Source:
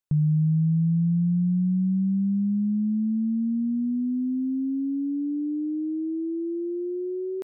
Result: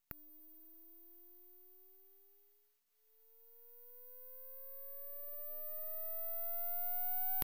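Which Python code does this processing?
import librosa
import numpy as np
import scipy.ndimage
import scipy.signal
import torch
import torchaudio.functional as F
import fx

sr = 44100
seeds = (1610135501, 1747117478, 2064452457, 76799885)

y = scipy.signal.sosfilt(scipy.signal.cheby2(4, 50, 230.0, 'highpass', fs=sr, output='sos'), x)
y = (np.kron(scipy.signal.resample_poly(y, 1, 3), np.eye(3)[0]) * 3)[:len(y)]
y = np.abs(y)
y = y * 10.0 ** (8.0 / 20.0)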